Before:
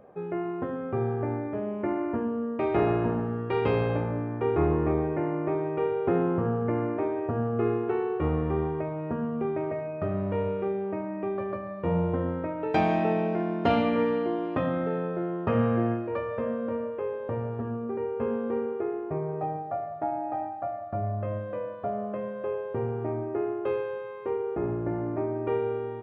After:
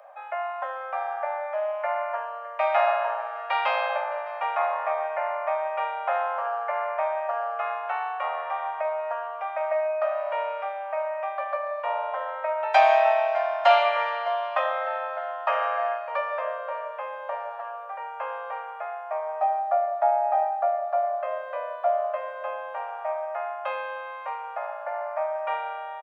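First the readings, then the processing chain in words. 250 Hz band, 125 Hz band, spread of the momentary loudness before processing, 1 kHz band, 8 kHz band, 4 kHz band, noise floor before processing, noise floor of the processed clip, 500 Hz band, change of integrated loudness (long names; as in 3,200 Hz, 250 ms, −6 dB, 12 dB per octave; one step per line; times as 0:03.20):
below −40 dB, below −40 dB, 8 LU, +9.0 dB, can't be measured, +9.0 dB, −36 dBFS, −37 dBFS, +0.5 dB, +2.0 dB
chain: Butterworth high-pass 570 Hz 96 dB per octave
on a send: single-tap delay 611 ms −21.5 dB
on the sum: level +9 dB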